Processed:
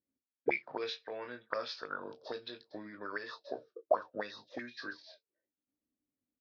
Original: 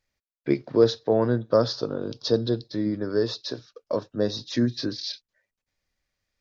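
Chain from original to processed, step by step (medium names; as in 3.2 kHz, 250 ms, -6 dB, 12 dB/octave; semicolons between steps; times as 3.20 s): early reflections 20 ms -6 dB, 33 ms -11 dB; auto-wah 270–2400 Hz, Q 8.6, up, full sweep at -19 dBFS; trim +9 dB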